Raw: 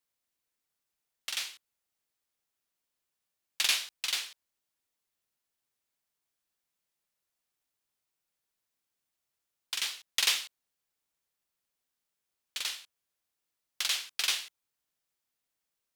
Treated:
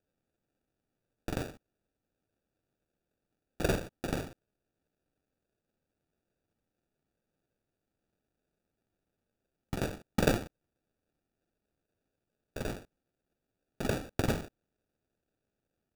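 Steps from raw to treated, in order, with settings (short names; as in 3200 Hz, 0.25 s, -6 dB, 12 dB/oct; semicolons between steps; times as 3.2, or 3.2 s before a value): 1.34–4.17 notch 4000 Hz, Q 6; sample-and-hold 42×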